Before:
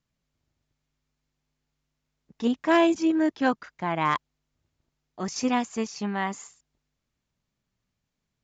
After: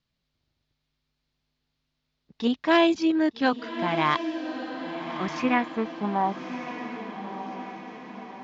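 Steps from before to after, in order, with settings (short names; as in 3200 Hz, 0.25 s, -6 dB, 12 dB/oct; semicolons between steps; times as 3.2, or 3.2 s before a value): low-pass sweep 4200 Hz -> 140 Hz, 5.04–7.54; diffused feedback echo 1.233 s, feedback 53%, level -9 dB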